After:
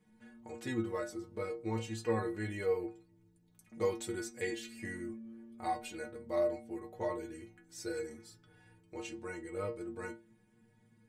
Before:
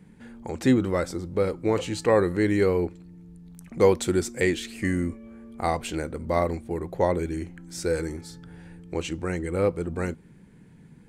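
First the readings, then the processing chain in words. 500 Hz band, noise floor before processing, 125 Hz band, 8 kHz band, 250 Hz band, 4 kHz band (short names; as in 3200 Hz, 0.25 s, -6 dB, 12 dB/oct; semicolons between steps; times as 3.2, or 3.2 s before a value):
-12.5 dB, -52 dBFS, -15.0 dB, -11.0 dB, -14.0 dB, -12.5 dB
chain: low shelf 150 Hz -5.5 dB; metallic resonator 110 Hz, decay 0.41 s, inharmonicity 0.008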